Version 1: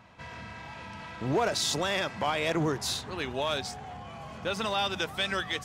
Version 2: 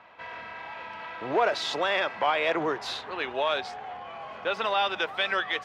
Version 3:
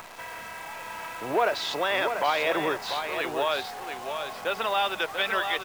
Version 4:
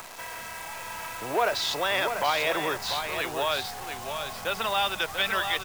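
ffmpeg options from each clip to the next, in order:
-filter_complex "[0:a]acrossover=split=370 3700:gain=0.1 1 0.0708[s0][s1][s2];[s0][s1][s2]amix=inputs=3:normalize=0,volume=1.78"
-af "acompressor=mode=upward:threshold=0.0158:ratio=2.5,acrusher=bits=8:dc=4:mix=0:aa=0.000001,aecho=1:1:690:0.447"
-filter_complex "[0:a]asubboost=boost=5:cutoff=160,acrossover=split=280|1600|4400[s0][s1][s2][s3];[s0]alimiter=level_in=5.96:limit=0.0631:level=0:latency=1,volume=0.168[s4];[s3]acontrast=73[s5];[s4][s1][s2][s5]amix=inputs=4:normalize=0"

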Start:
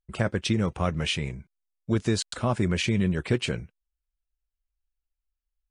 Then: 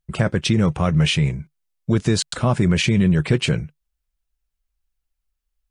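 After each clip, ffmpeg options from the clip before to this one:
-filter_complex "[0:a]equalizer=f=150:t=o:w=0.38:g=10,asplit=2[s0][s1];[s1]alimiter=limit=0.141:level=0:latency=1:release=24,volume=1.26[s2];[s0][s2]amix=inputs=2:normalize=0"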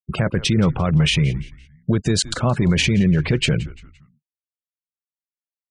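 -filter_complex "[0:a]afftfilt=real='re*gte(hypot(re,im),0.0224)':imag='im*gte(hypot(re,im),0.0224)':win_size=1024:overlap=0.75,asplit=4[s0][s1][s2][s3];[s1]adelay=172,afreqshift=-100,volume=0.1[s4];[s2]adelay=344,afreqshift=-200,volume=0.0389[s5];[s3]adelay=516,afreqshift=-300,volume=0.0151[s6];[s0][s4][s5][s6]amix=inputs=4:normalize=0,alimiter=level_in=3.35:limit=0.891:release=50:level=0:latency=1,volume=0.422"

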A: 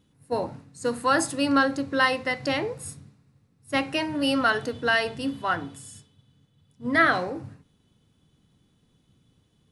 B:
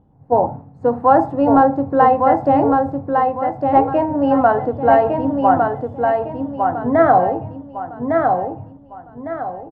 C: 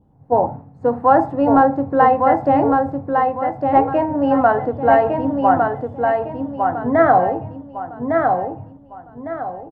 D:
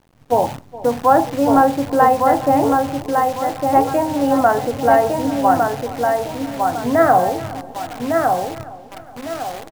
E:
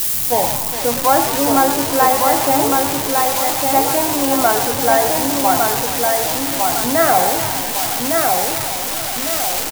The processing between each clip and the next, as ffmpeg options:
-filter_complex "[0:a]lowpass=f=790:t=q:w=4.7,lowshelf=f=110:g=10,asplit=2[s0][s1];[s1]aecho=0:1:1156|2312|3468|4624:0.631|0.215|0.0729|0.0248[s2];[s0][s2]amix=inputs=2:normalize=0,volume=1.88"
-af "adynamicequalizer=threshold=0.0316:dfrequency=1900:dqfactor=1.7:tfrequency=1900:tqfactor=1.7:attack=5:release=100:ratio=0.375:range=2:mode=boostabove:tftype=bell,volume=0.891"
-filter_complex "[0:a]acrusher=bits=6:dc=4:mix=0:aa=0.000001,asplit=2[s0][s1];[s1]adelay=417,lowpass=f=2400:p=1,volume=0.126,asplit=2[s2][s3];[s3]adelay=417,lowpass=f=2400:p=1,volume=0.52,asplit=2[s4][s5];[s5]adelay=417,lowpass=f=2400:p=1,volume=0.52,asplit=2[s6][s7];[s7]adelay=417,lowpass=f=2400:p=1,volume=0.52[s8];[s0][s2][s4][s6][s8]amix=inputs=5:normalize=0"
-filter_complex "[0:a]aeval=exprs='val(0)+0.5*0.0944*sgn(val(0))':c=same,asplit=9[s0][s1][s2][s3][s4][s5][s6][s7][s8];[s1]adelay=111,afreqshift=57,volume=0.266[s9];[s2]adelay=222,afreqshift=114,volume=0.168[s10];[s3]adelay=333,afreqshift=171,volume=0.106[s11];[s4]adelay=444,afreqshift=228,volume=0.0668[s12];[s5]adelay=555,afreqshift=285,volume=0.0417[s13];[s6]adelay=666,afreqshift=342,volume=0.0263[s14];[s7]adelay=777,afreqshift=399,volume=0.0166[s15];[s8]adelay=888,afreqshift=456,volume=0.0105[s16];[s0][s9][s10][s11][s12][s13][s14][s15][s16]amix=inputs=9:normalize=0,crystalizer=i=5.5:c=0,volume=0.596"

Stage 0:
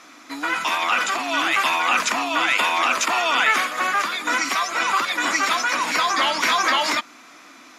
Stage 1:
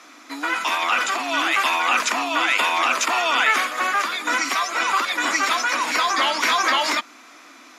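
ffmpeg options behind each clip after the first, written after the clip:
-af "highpass=f=220:w=0.5412,highpass=f=220:w=1.3066"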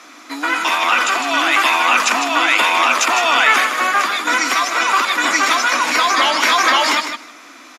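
-af "aecho=1:1:155|310:0.398|0.0597,volume=1.78"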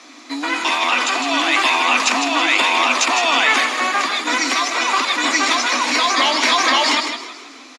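-filter_complex "[0:a]highpass=190,equalizer=f=260:t=q:w=4:g=7,equalizer=f=1400:t=q:w=4:g=-8,equalizer=f=4200:t=q:w=4:g=5,lowpass=f=9600:w=0.5412,lowpass=f=9600:w=1.3066,asplit=6[s0][s1][s2][s3][s4][s5];[s1]adelay=161,afreqshift=42,volume=0.224[s6];[s2]adelay=322,afreqshift=84,volume=0.112[s7];[s3]adelay=483,afreqshift=126,volume=0.0562[s8];[s4]adelay=644,afreqshift=168,volume=0.0279[s9];[s5]adelay=805,afreqshift=210,volume=0.014[s10];[s0][s6][s7][s8][s9][s10]amix=inputs=6:normalize=0,volume=0.891"

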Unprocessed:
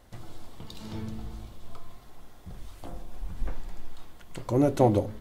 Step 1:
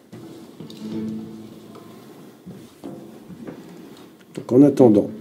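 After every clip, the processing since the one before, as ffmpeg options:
-af "highpass=f=160:w=0.5412,highpass=f=160:w=1.3066,lowshelf=f=520:t=q:w=1.5:g=8,areverse,acompressor=mode=upward:threshold=0.0141:ratio=2.5,areverse,volume=1.33"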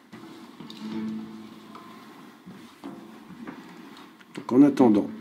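-af "equalizer=f=125:t=o:w=1:g=-6,equalizer=f=250:t=o:w=1:g=7,equalizer=f=500:t=o:w=1:g=-8,equalizer=f=1000:t=o:w=1:g=11,equalizer=f=2000:t=o:w=1:g=8,equalizer=f=4000:t=o:w=1:g=5,volume=0.447"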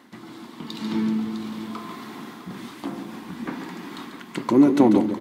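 -filter_complex "[0:a]acompressor=threshold=0.0282:ratio=1.5,asplit=2[s0][s1];[s1]aecho=0:1:142|655:0.355|0.251[s2];[s0][s2]amix=inputs=2:normalize=0,dynaudnorm=f=110:g=11:m=2,volume=1.26"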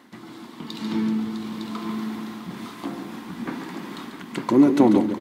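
-af "aecho=1:1:908:0.447"

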